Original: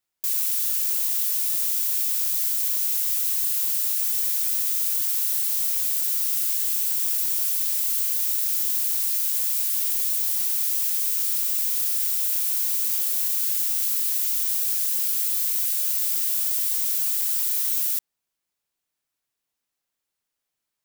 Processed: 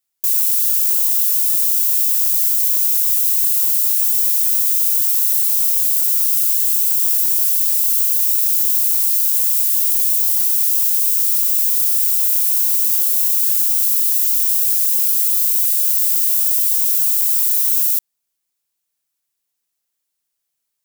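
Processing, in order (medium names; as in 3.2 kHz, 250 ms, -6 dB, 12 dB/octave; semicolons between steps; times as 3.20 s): treble shelf 4.4 kHz +10.5 dB; trim -2 dB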